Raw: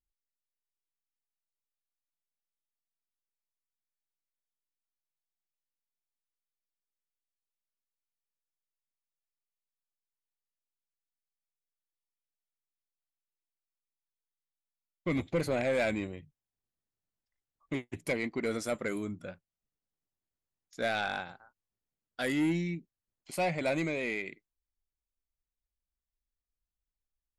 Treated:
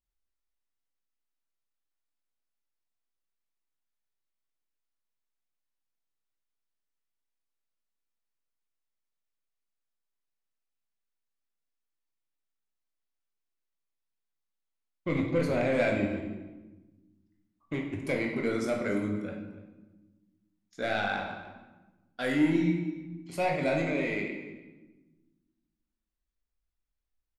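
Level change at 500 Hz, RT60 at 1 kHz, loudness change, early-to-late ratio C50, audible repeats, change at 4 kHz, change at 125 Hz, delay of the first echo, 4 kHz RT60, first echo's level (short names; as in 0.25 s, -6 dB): +3.0 dB, 1.1 s, +3.0 dB, 4.0 dB, 1, 0.0 dB, +4.0 dB, 0.295 s, 0.90 s, -19.5 dB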